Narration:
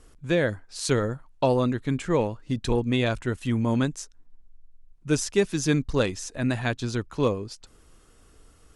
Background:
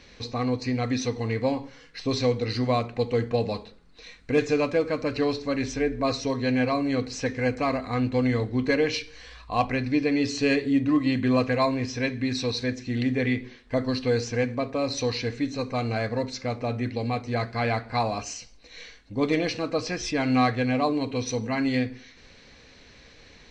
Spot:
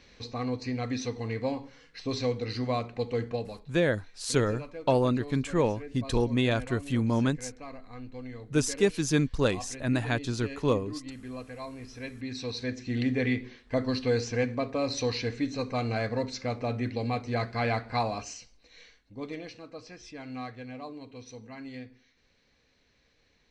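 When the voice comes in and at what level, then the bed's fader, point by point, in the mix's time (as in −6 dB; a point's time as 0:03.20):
3.45 s, −2.0 dB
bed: 0:03.29 −5.5 dB
0:03.72 −18 dB
0:11.56 −18 dB
0:12.92 −2.5 dB
0:17.94 −2.5 dB
0:19.63 −17 dB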